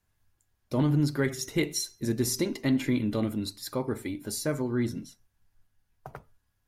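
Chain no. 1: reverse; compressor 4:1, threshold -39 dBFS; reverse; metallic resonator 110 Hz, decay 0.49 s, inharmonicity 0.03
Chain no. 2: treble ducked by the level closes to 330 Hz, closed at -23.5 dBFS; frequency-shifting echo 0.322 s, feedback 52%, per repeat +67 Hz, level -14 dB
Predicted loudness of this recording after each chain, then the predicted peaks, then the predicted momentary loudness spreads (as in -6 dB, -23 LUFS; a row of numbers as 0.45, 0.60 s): -53.0, -31.0 LUFS; -37.5, -17.0 dBFS; 12, 21 LU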